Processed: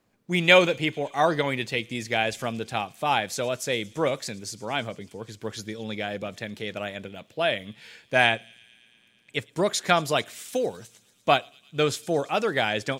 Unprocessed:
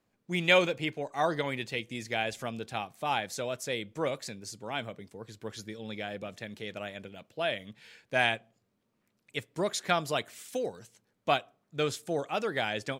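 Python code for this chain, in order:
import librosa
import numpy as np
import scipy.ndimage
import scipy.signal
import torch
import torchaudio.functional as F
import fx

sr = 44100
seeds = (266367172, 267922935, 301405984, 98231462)

p1 = fx.high_shelf(x, sr, hz=11000.0, db=-9.0, at=(8.27, 9.45))
p2 = p1 + fx.echo_wet_highpass(p1, sr, ms=112, feedback_pct=79, hz=4100.0, wet_db=-19.5, dry=0)
y = F.gain(torch.from_numpy(p2), 6.5).numpy()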